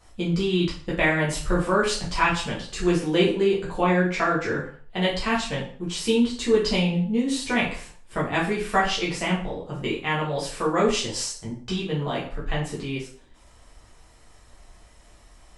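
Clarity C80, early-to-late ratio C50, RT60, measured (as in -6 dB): 11.0 dB, 6.0 dB, 0.45 s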